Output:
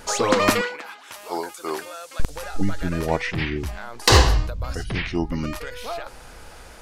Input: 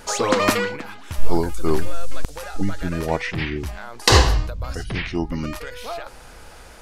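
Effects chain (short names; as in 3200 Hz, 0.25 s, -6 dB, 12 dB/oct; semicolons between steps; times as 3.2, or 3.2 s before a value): 0.61–2.2 HPF 560 Hz 12 dB/oct; overloaded stage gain 6 dB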